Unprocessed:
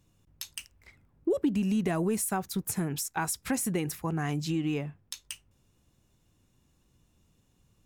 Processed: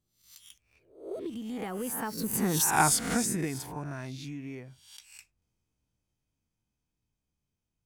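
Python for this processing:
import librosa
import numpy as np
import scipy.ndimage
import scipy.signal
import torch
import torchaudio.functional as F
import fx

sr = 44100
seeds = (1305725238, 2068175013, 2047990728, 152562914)

y = fx.spec_swells(x, sr, rise_s=0.56)
y = fx.doppler_pass(y, sr, speed_mps=44, closest_m=9.2, pass_at_s=2.74)
y = F.gain(torch.from_numpy(y), 6.5).numpy()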